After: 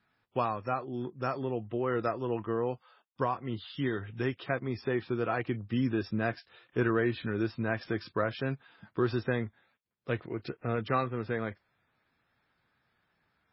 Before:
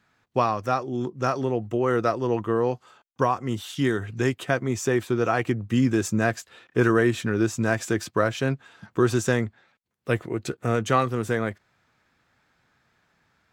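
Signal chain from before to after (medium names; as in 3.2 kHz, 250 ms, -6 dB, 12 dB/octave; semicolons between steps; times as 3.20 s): trim -7.5 dB; MP3 16 kbps 16 kHz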